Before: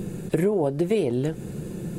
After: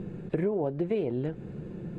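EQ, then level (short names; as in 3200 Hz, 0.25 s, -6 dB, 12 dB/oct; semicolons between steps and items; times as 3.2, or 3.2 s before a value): LPF 2400 Hz 12 dB/oct; -6.0 dB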